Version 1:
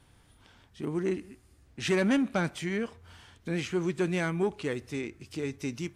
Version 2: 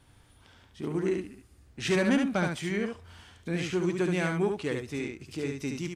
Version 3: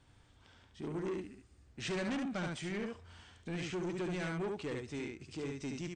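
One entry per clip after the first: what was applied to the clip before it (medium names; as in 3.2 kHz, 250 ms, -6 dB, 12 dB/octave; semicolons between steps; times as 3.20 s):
delay 71 ms -4.5 dB
saturation -28.5 dBFS, distortion -10 dB; brick-wall FIR low-pass 9 kHz; trim -5 dB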